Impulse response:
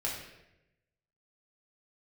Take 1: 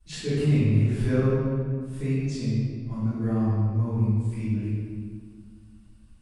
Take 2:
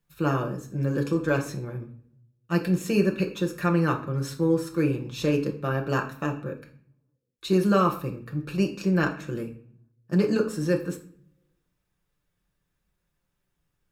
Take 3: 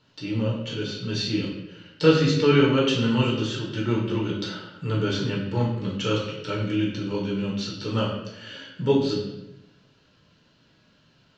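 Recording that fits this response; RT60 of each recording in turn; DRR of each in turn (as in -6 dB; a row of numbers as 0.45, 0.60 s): 3; 1.9, 0.50, 0.90 s; -20.0, 1.0, -4.5 dB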